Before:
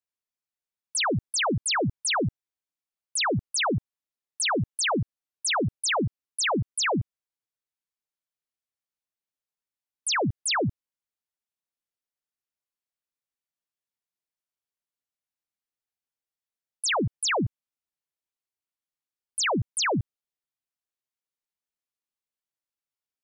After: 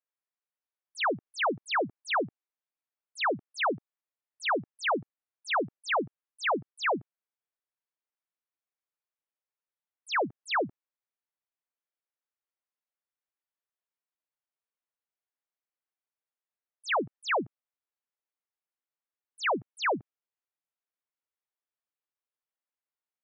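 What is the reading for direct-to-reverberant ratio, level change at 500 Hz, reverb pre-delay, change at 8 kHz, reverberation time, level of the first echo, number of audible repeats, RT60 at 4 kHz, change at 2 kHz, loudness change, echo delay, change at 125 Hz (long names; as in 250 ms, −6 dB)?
no reverb audible, −1.5 dB, no reverb audible, −21.5 dB, no reverb audible, no echo audible, no echo audible, no reverb audible, −2.0 dB, −4.5 dB, no echo audible, −18.5 dB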